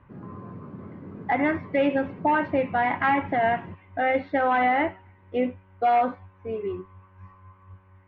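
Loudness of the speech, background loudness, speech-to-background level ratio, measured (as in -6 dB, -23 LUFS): -25.0 LUFS, -42.0 LUFS, 17.0 dB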